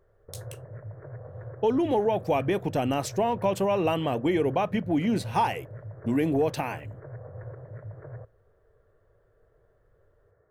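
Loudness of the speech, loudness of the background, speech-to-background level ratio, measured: -26.5 LUFS, -42.5 LUFS, 16.0 dB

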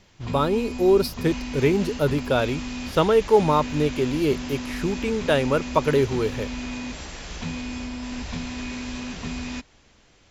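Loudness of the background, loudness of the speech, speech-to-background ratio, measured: -32.5 LUFS, -23.0 LUFS, 9.5 dB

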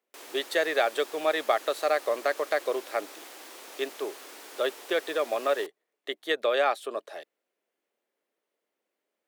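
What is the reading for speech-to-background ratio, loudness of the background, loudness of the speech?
15.5 dB, -44.5 LUFS, -29.0 LUFS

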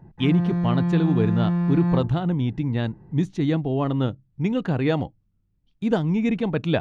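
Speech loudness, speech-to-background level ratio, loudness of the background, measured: -24.5 LUFS, -0.5 dB, -24.0 LUFS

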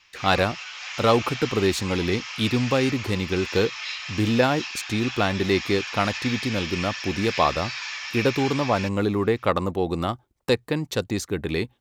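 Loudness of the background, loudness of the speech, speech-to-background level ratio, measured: -32.0 LUFS, -24.5 LUFS, 7.5 dB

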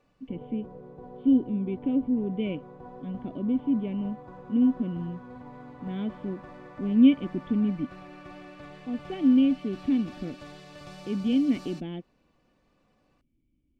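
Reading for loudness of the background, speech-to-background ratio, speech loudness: -45.5 LUFS, 18.5 dB, -27.0 LUFS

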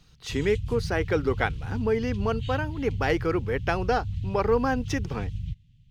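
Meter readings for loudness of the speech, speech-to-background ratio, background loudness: -28.0 LUFS, 6.0 dB, -34.0 LUFS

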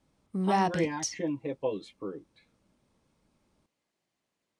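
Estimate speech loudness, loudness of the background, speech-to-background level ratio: -35.0 LUFS, -31.0 LUFS, -4.0 dB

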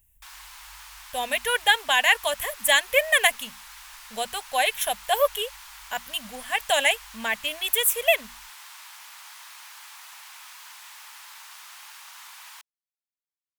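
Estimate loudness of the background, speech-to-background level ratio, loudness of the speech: -43.0 LUFS, 20.0 dB, -23.0 LUFS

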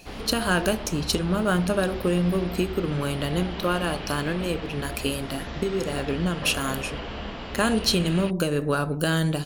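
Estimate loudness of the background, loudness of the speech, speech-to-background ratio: -35.5 LUFS, -25.5 LUFS, 10.0 dB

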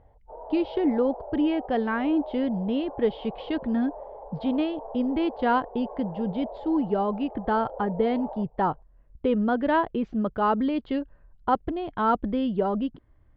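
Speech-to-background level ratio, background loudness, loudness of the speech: 13.5 dB, -40.5 LUFS, -27.0 LUFS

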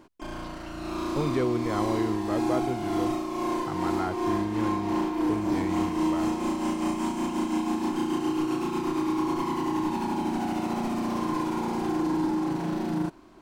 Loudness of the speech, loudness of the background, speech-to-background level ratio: -33.5 LUFS, -28.5 LUFS, -5.0 dB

